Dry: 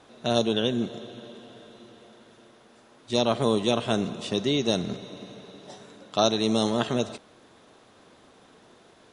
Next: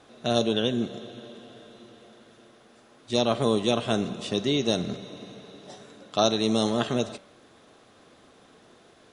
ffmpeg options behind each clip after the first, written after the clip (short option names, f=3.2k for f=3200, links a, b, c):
-af "bandreject=f=930:w=13,bandreject=f=192.4:t=h:w=4,bandreject=f=384.8:t=h:w=4,bandreject=f=577.2:t=h:w=4,bandreject=f=769.6:t=h:w=4,bandreject=f=962:t=h:w=4,bandreject=f=1.1544k:t=h:w=4,bandreject=f=1.3468k:t=h:w=4,bandreject=f=1.5392k:t=h:w=4,bandreject=f=1.7316k:t=h:w=4,bandreject=f=1.924k:t=h:w=4,bandreject=f=2.1164k:t=h:w=4,bandreject=f=2.3088k:t=h:w=4,bandreject=f=2.5012k:t=h:w=4,bandreject=f=2.6936k:t=h:w=4,bandreject=f=2.886k:t=h:w=4,bandreject=f=3.0784k:t=h:w=4,bandreject=f=3.2708k:t=h:w=4,bandreject=f=3.4632k:t=h:w=4,bandreject=f=3.6556k:t=h:w=4,bandreject=f=3.848k:t=h:w=4,bandreject=f=4.0404k:t=h:w=4,bandreject=f=4.2328k:t=h:w=4,bandreject=f=4.4252k:t=h:w=4"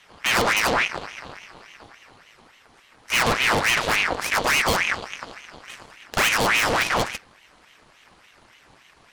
-af "asoftclip=type=tanh:threshold=-21dB,aeval=exprs='0.0891*(cos(1*acos(clip(val(0)/0.0891,-1,1)))-cos(1*PI/2))+0.01*(cos(3*acos(clip(val(0)/0.0891,-1,1)))-cos(3*PI/2))+0.0447*(cos(6*acos(clip(val(0)/0.0891,-1,1)))-cos(6*PI/2))+0.01*(cos(8*acos(clip(val(0)/0.0891,-1,1)))-cos(8*PI/2))':c=same,aeval=exprs='val(0)*sin(2*PI*1500*n/s+1500*0.7/3.5*sin(2*PI*3.5*n/s))':c=same,volume=7.5dB"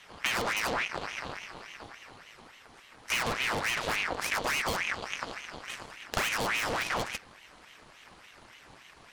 -af "acompressor=threshold=-27dB:ratio=6"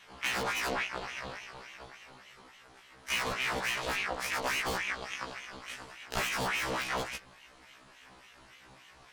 -af "afftfilt=real='re*1.73*eq(mod(b,3),0)':imag='im*1.73*eq(mod(b,3),0)':win_size=2048:overlap=0.75"